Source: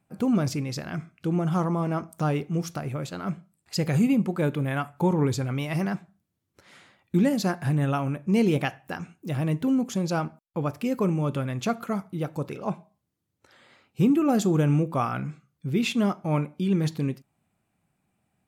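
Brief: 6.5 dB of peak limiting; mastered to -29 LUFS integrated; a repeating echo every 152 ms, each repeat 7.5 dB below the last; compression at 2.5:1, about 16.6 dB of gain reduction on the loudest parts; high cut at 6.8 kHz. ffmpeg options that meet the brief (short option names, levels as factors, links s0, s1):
-af "lowpass=6800,acompressor=threshold=0.00631:ratio=2.5,alimiter=level_in=3.16:limit=0.0631:level=0:latency=1,volume=0.316,aecho=1:1:152|304|456|608|760:0.422|0.177|0.0744|0.0312|0.0131,volume=4.73"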